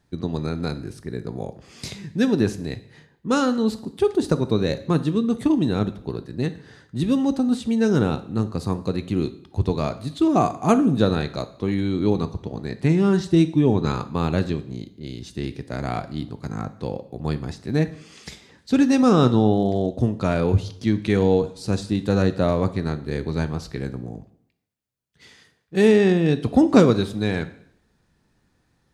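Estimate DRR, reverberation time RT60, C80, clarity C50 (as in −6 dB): 10.5 dB, 0.65 s, 18.5 dB, 14.5 dB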